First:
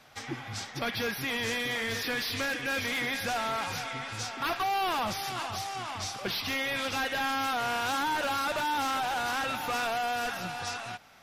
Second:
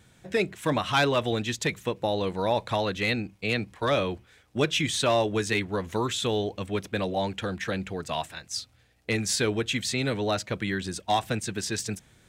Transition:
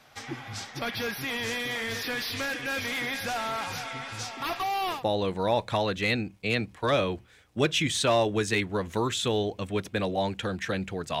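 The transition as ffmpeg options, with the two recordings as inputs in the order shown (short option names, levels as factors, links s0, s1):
-filter_complex "[0:a]asettb=1/sr,asplit=3[s0][s1][s2];[s0]atrim=end=4.244[s3];[s1]atrim=start=4.24:end=5.04,asetpts=PTS-STARTPTS,afade=t=in:d=0.004:c=qsin,afade=t=out:st=0.796:d=0.004:c=qsin,bandreject=f=1500:w=6.4[s4];[s2]atrim=start=5.036[s5];[s3][s4]acrossfade=d=0.004:c1=hsin:c2=qsin[s6];[s6][s5]acrossfade=d=0.004:c1=qsin:c2=hsin,apad=whole_dur=11.2,atrim=end=11.2,atrim=end=5.04,asetpts=PTS-STARTPTS[s7];[1:a]atrim=start=1.89:end=8.19,asetpts=PTS-STARTPTS[s8];[s7][s8]acrossfade=d=0.14:c1=tri:c2=tri"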